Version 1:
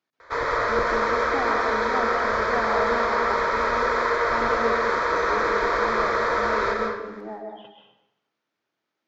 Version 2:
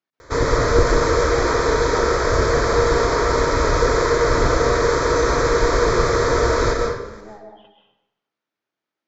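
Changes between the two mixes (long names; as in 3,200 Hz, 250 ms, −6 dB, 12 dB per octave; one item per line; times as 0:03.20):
speech −4.5 dB
background: remove three-way crossover with the lows and the highs turned down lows −19 dB, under 570 Hz, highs −23 dB, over 3,700 Hz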